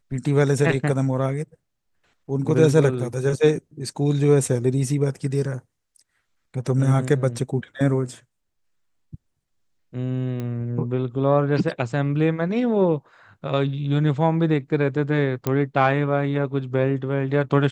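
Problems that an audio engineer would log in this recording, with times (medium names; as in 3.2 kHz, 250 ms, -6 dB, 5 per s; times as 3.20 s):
10.40 s: pop -18 dBFS
15.47 s: pop -9 dBFS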